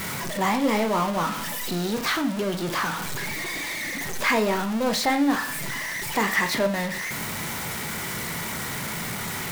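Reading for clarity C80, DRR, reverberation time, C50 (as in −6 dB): 17.5 dB, 7.5 dB, 0.45 s, 13.0 dB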